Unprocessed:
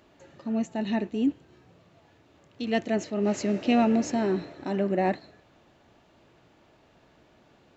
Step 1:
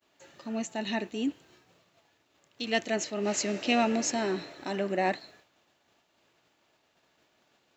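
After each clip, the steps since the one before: expander -52 dBFS; tilt EQ +3 dB/octave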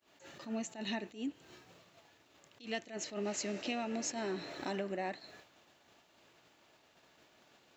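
compression 8:1, threshold -38 dBFS, peak gain reduction 17.5 dB; attacks held to a fixed rise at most 170 dB/s; trim +3.5 dB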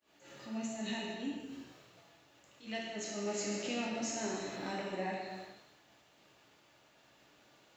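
gated-style reverb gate 490 ms falling, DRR -4 dB; trim -4.5 dB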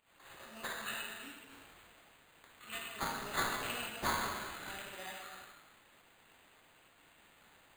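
pre-emphasis filter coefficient 0.97; careless resampling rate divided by 8×, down none, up hold; trim +9.5 dB

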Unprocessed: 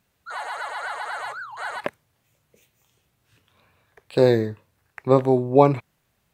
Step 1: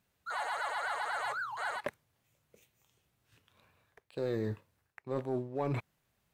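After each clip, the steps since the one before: reverse; compression 5:1, threshold -30 dBFS, peak gain reduction 19.5 dB; reverse; waveshaping leveller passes 1; trim -5.5 dB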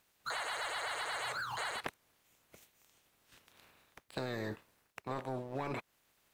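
spectral peaks clipped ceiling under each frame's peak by 17 dB; compression 6:1, threshold -40 dBFS, peak gain reduction 9.5 dB; trim +4 dB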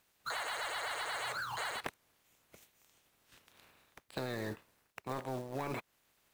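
short-mantissa float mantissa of 2-bit

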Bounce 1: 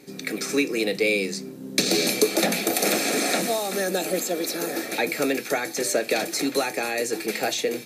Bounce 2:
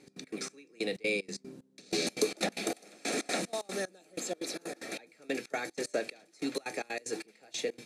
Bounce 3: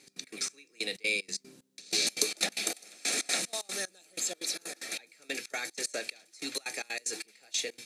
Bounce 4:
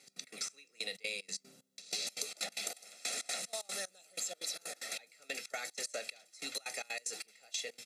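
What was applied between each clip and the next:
low-pass 10 kHz 24 dB/octave; trance gate "x.x.xx....xx.x" 187 bpm -24 dB; trim -8.5 dB
tilt shelf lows -8.5 dB, about 1.5 kHz
high-pass 170 Hz 12 dB/octave; comb 1.5 ms, depth 67%; compression 6:1, threshold -31 dBFS, peak gain reduction 10 dB; trim -4 dB

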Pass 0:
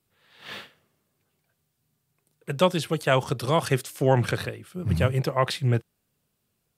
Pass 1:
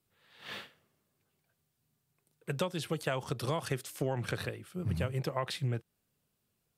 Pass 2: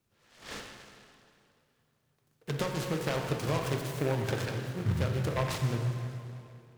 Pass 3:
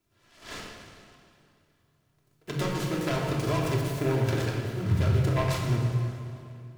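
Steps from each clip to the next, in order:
compression 12:1, threshold -24 dBFS, peak gain reduction 11.5 dB; trim -4.5 dB
in parallel at -10 dB: sample-rate reducer 1.1 kHz; on the sum: plate-style reverb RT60 2.7 s, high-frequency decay 0.75×, DRR 2 dB; delay time shaken by noise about 1.3 kHz, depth 0.076 ms
simulated room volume 2300 m³, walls furnished, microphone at 3 m

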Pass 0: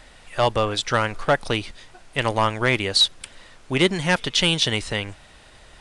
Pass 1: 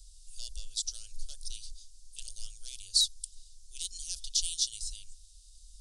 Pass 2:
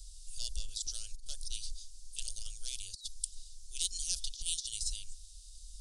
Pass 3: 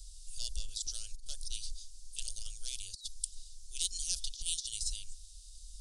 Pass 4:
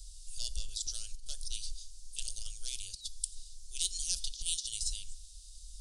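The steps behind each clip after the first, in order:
inverse Chebyshev band-stop 120–2100 Hz, stop band 50 dB
compressor with a negative ratio -35 dBFS, ratio -0.5; trim +1 dB
no audible change
reverberation RT60 1.0 s, pre-delay 4 ms, DRR 14.5 dB; trim +1 dB

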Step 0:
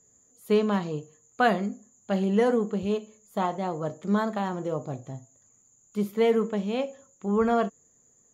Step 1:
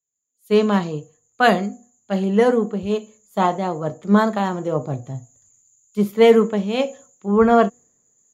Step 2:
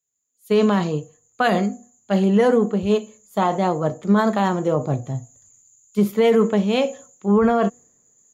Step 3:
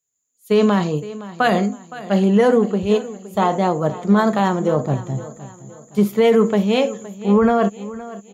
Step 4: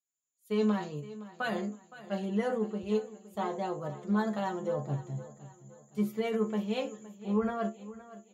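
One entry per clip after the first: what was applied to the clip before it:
de-hum 242.7 Hz, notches 3; level rider gain up to 16 dB; three bands expanded up and down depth 70%; trim -4 dB
loudness maximiser +11 dB; trim -7.5 dB
feedback delay 516 ms, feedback 41%, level -16.5 dB; trim +2 dB
inharmonic resonator 70 Hz, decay 0.24 s, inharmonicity 0.002; trim -8.5 dB

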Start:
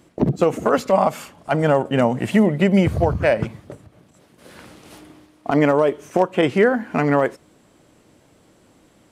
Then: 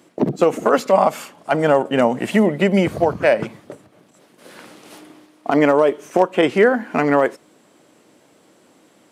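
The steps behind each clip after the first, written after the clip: high-pass 220 Hz 12 dB/octave; trim +2.5 dB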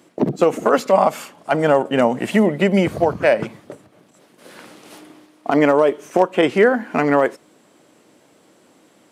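no audible change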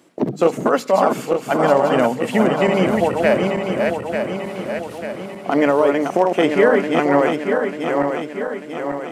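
backward echo that repeats 446 ms, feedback 72%, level -4 dB; hum notches 50/100/150/200 Hz; trim -1.5 dB

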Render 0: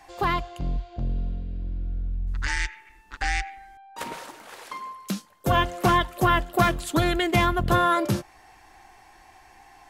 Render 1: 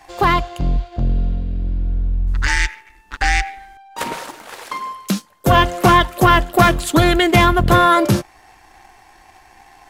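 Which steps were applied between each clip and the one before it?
waveshaping leveller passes 1; trim +6 dB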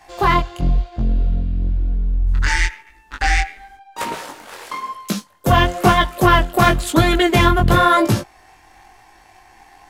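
chorus 0.99 Hz, delay 18 ms, depth 5.7 ms; trim +2 dB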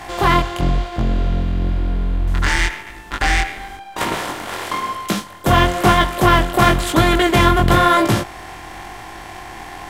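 spectral levelling over time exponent 0.6; trim -2.5 dB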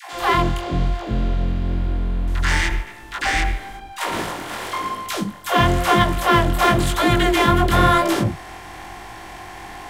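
phase dispersion lows, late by 133 ms, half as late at 440 Hz; trim -2.5 dB

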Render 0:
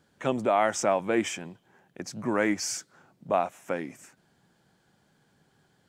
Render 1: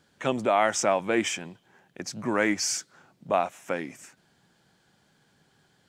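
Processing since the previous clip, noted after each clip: peaking EQ 3.9 kHz +5 dB 2.7 oct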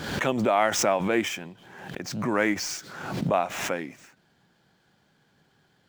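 median filter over 5 samples; swell ahead of each attack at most 50 dB/s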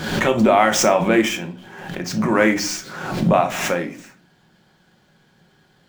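simulated room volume 240 m³, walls furnished, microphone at 1 m; trim +6 dB

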